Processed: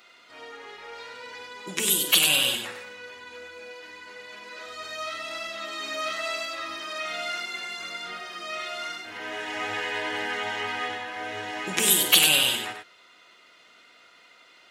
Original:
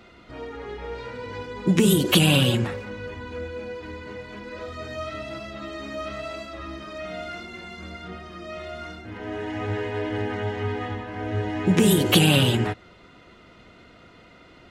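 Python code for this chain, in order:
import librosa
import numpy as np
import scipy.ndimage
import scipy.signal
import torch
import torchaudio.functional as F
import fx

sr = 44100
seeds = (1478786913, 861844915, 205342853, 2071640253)

p1 = fx.highpass(x, sr, hz=850.0, slope=6)
p2 = fx.tilt_eq(p1, sr, slope=2.5)
p3 = fx.rider(p2, sr, range_db=4, speed_s=2.0)
y = p3 + fx.echo_multitap(p3, sr, ms=(47, 97), db=(-12.0, -6.5), dry=0)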